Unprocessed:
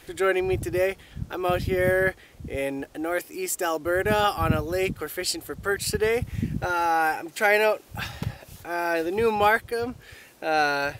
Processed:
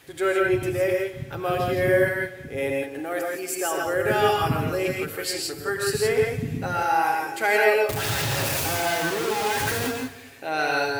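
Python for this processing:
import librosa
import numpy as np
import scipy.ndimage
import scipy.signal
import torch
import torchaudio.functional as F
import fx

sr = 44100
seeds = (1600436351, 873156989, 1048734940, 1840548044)

y = fx.clip_1bit(x, sr, at=(7.89, 9.91))
y = scipy.signal.sosfilt(scipy.signal.butter(2, 69.0, 'highpass', fs=sr, output='sos'), y)
y = y + 0.4 * np.pad(y, (int(7.3 * sr / 1000.0), 0))[:len(y)]
y = fx.echo_heads(y, sr, ms=74, heads='second and third', feedback_pct=40, wet_db=-19.0)
y = fx.rev_gated(y, sr, seeds[0], gate_ms=190, shape='rising', drr_db=0.0)
y = y * 10.0 ** (-3.0 / 20.0)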